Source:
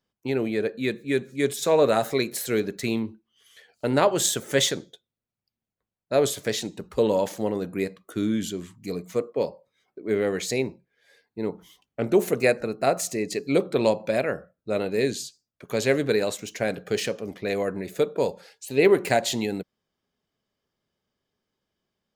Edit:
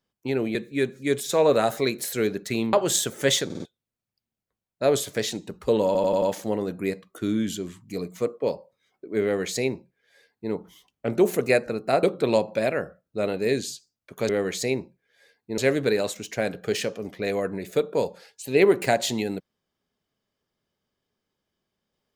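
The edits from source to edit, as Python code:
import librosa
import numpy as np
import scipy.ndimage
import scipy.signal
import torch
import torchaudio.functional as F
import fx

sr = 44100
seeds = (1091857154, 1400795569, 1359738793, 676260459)

y = fx.edit(x, sr, fx.cut(start_s=0.55, length_s=0.33),
    fx.cut(start_s=3.06, length_s=0.97),
    fx.stutter_over(start_s=4.75, slice_s=0.05, count=4),
    fx.stutter(start_s=7.16, slice_s=0.09, count=5),
    fx.duplicate(start_s=10.17, length_s=1.29, to_s=15.81),
    fx.cut(start_s=12.97, length_s=0.58), tone=tone)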